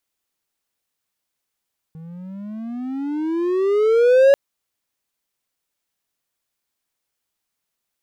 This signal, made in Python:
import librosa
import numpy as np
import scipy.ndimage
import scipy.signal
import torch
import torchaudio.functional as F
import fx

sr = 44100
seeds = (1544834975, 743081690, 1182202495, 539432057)

y = fx.riser_tone(sr, length_s=2.39, level_db=-6, wave='triangle', hz=158.0, rise_st=22.0, swell_db=26.5)